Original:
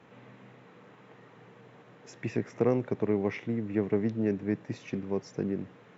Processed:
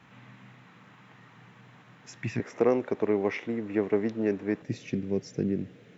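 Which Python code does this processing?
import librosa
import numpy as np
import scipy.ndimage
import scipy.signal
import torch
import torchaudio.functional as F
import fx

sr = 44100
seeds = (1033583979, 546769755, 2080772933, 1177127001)

y = fx.peak_eq(x, sr, hz=fx.steps((0.0, 460.0), (2.4, 130.0), (4.62, 1000.0)), db=-14.5, octaves=1.2)
y = y * librosa.db_to_amplitude(4.5)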